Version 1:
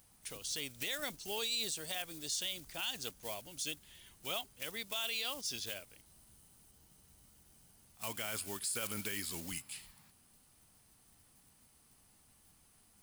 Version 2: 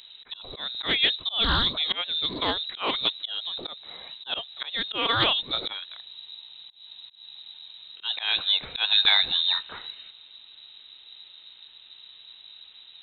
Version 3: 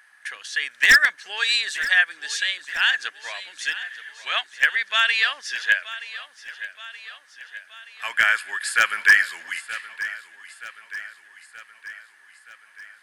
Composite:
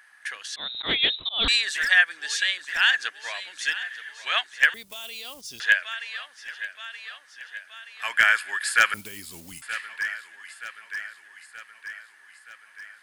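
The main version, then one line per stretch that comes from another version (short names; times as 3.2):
3
0.56–1.48 from 2
4.74–5.6 from 1
8.94–9.62 from 1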